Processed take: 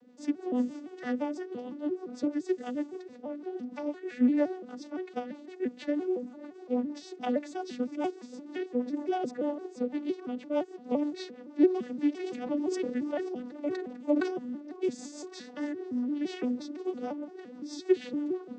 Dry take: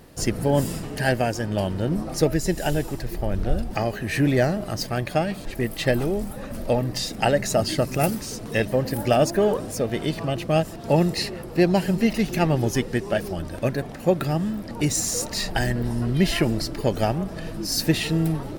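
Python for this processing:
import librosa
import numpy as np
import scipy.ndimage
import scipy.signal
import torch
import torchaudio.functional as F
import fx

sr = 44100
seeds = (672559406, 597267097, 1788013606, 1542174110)

y = fx.vocoder_arp(x, sr, chord='minor triad', root=59, every_ms=171)
y = fx.rotary(y, sr, hz=6.3)
y = fx.sustainer(y, sr, db_per_s=59.0, at=(12.22, 14.31), fade=0.02)
y = y * 10.0 ** (-6.5 / 20.0)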